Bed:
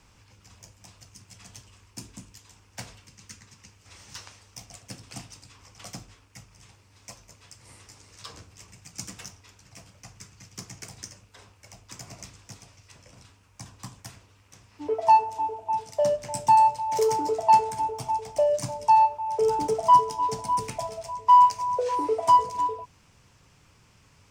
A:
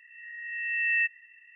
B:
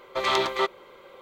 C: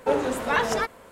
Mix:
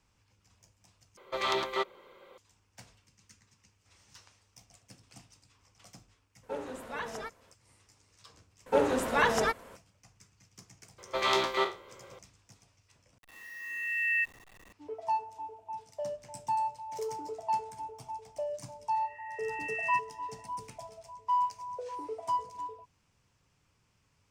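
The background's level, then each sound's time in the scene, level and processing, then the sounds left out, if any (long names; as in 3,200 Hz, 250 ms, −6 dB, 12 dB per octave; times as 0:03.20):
bed −13.5 dB
0:01.17: overwrite with B −6.5 dB
0:06.43: mix in C −15 dB
0:08.66: mix in C −2.5 dB
0:10.98: mix in B −4.5 dB + peak hold with a decay on every bin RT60 0.32 s
0:13.18: overwrite with A −3 dB + hold until the input has moved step −46.5 dBFS
0:18.92: mix in A −7 dB + dynamic equaliser 1,700 Hz, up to −6 dB, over −41 dBFS, Q 3.6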